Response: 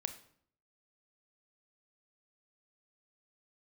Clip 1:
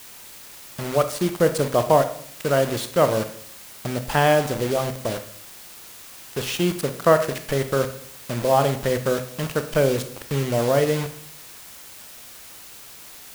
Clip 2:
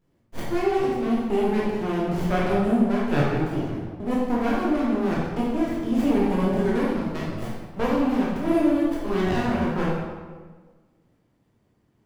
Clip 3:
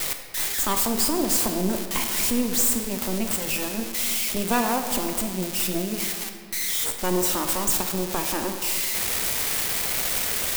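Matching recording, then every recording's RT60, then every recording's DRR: 1; 0.60, 1.4, 2.0 seconds; 8.5, −7.0, 5.0 decibels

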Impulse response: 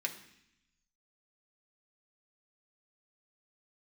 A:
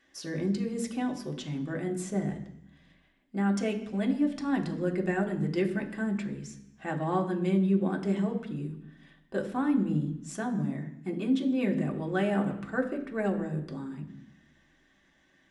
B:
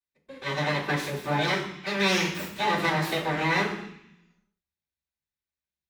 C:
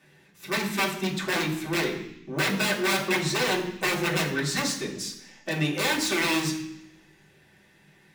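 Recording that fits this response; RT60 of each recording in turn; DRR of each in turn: A; 0.75, 0.75, 0.75 seconds; 1.0, −13.0, −4.5 decibels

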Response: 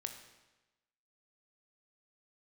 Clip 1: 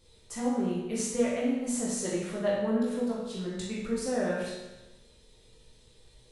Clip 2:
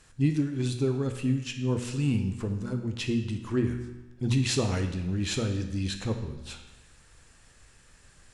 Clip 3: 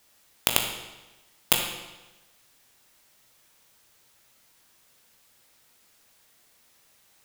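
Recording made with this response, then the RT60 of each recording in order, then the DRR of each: 2; 1.1, 1.1, 1.1 seconds; −5.5, 5.5, 1.0 decibels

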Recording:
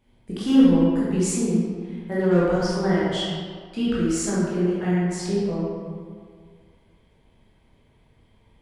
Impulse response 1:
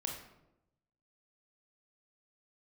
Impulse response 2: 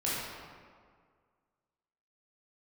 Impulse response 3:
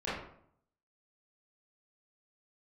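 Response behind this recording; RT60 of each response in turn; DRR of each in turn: 2; 0.90, 1.9, 0.65 seconds; 0.5, −8.5, −11.5 decibels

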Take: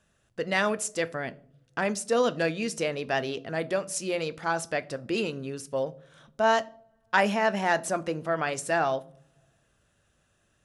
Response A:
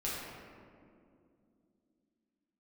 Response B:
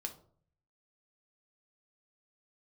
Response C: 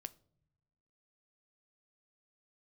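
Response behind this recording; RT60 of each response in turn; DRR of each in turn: C; 2.5 s, 0.55 s, non-exponential decay; −8.0, 4.0, 13.0 decibels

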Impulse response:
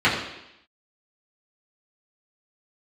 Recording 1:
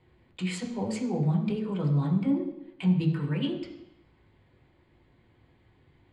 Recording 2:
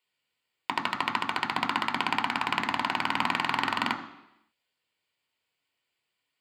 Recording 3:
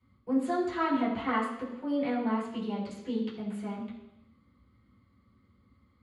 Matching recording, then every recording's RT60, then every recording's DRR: 3; 0.85, 0.85, 0.85 seconds; −0.5, 5.0, −9.5 decibels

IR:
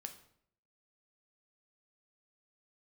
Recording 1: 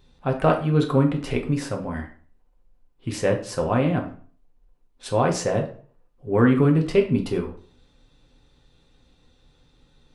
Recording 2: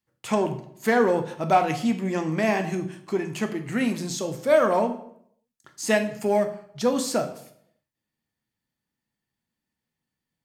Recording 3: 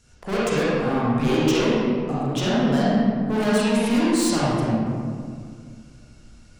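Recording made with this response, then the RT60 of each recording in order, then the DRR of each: 2; 0.45, 0.65, 2.1 seconds; 1.5, 6.0, −8.5 decibels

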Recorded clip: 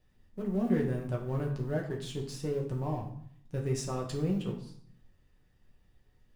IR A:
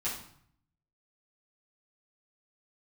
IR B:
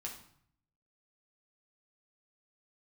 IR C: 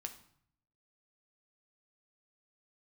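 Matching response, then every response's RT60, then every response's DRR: B; 0.60, 0.60, 0.60 seconds; −9.5, −1.5, 5.0 decibels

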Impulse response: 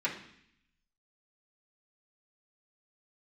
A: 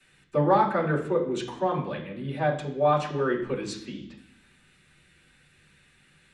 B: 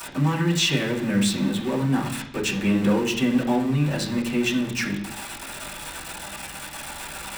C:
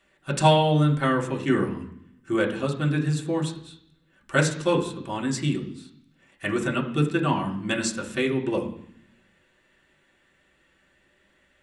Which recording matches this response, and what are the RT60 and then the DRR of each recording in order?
B; 0.65, 0.65, 0.65 seconds; −16.0, −9.0, −2.0 decibels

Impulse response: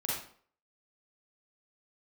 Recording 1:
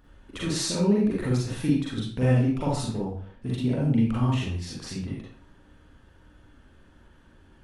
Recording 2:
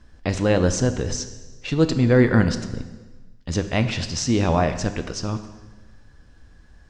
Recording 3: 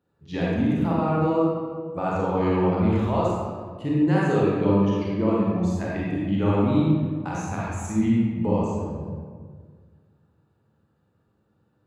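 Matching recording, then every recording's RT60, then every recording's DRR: 1; 0.50, 1.3, 1.7 seconds; −6.5, 8.5, −6.5 decibels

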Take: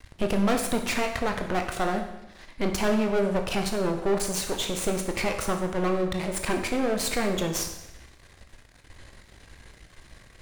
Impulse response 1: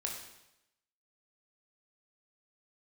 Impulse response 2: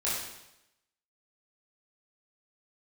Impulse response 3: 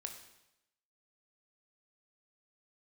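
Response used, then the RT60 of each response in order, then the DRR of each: 3; 0.90, 0.90, 0.90 seconds; −0.5, −8.5, 4.0 decibels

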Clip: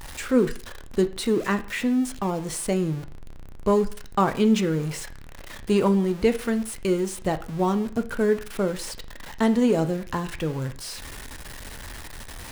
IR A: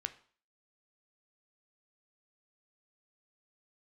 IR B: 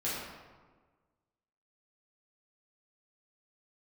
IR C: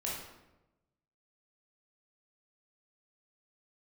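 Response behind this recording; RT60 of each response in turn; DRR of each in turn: A; 0.45, 1.4, 1.0 seconds; 9.0, −10.0, −5.5 decibels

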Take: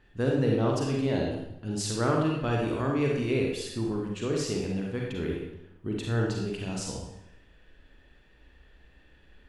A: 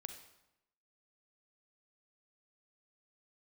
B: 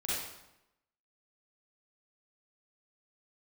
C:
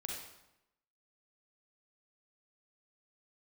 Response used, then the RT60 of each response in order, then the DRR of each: C; 0.90, 0.90, 0.90 seconds; 6.5, −9.0, −1.5 decibels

